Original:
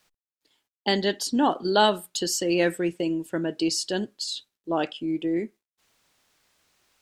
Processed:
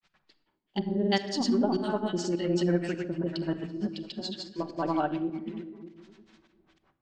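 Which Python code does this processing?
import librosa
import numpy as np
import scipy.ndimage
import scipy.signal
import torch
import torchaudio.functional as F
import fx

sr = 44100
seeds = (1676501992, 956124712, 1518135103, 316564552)

y = fx.law_mismatch(x, sr, coded='mu')
y = scipy.signal.sosfilt(scipy.signal.butter(4, 8800.0, 'lowpass', fs=sr, output='sos'), y)
y = fx.peak_eq(y, sr, hz=470.0, db=-7.0, octaves=0.98)
y = fx.echo_alternate(y, sr, ms=115, hz=1400.0, feedback_pct=69, wet_db=-10.5)
y = fx.filter_lfo_lowpass(y, sr, shape='sine', hz=2.6, low_hz=360.0, high_hz=4700.0, q=0.86)
y = fx.granulator(y, sr, seeds[0], grain_ms=100.0, per_s=20.0, spray_ms=245.0, spread_st=0)
y = fx.volume_shaper(y, sr, bpm=102, per_beat=1, depth_db=-22, release_ms=136.0, shape='fast start')
y = fx.room_shoebox(y, sr, seeds[1], volume_m3=3300.0, walls='furnished', distance_m=1.1)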